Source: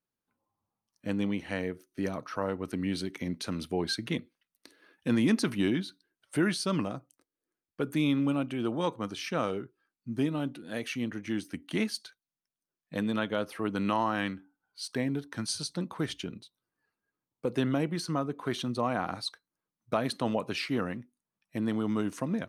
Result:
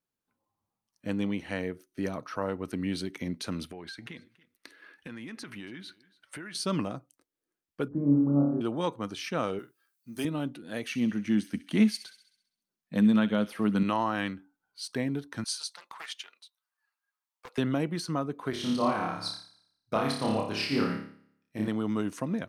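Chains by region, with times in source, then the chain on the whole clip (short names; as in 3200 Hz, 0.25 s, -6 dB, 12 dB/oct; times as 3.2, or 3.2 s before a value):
3.68–6.55 bell 1800 Hz +9.5 dB 1.6 oct + compressor 8:1, threshold -39 dBFS + echo 0.282 s -22.5 dB
7.88–8.61 Gaussian blur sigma 10 samples + flutter echo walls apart 4.8 m, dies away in 0.81 s
9.59–10.25 RIAA curve recording + doubler 48 ms -12.5 dB
10.88–13.83 bell 210 Hz +11 dB 0.38 oct + thin delay 66 ms, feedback 55%, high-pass 2000 Hz, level -12.5 dB
15.44–17.58 HPF 840 Hz 24 dB/oct + Doppler distortion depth 0.37 ms
18.5–21.68 bell 5100 Hz +7.5 dB 0.21 oct + flutter echo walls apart 4.9 m, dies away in 0.77 s + upward expander, over -47 dBFS
whole clip: dry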